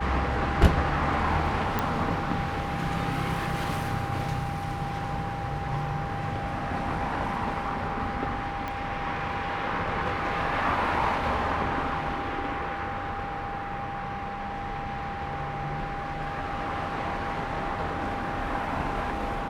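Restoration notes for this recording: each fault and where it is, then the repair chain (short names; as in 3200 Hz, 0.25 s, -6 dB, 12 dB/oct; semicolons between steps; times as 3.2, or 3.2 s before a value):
tone 800 Hz -34 dBFS
1.79 pop -12 dBFS
8.68 pop -19 dBFS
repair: de-click; notch 800 Hz, Q 30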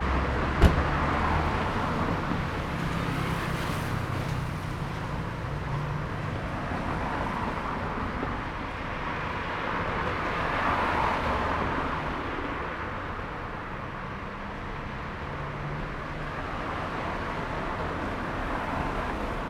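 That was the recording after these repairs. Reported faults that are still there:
8.68 pop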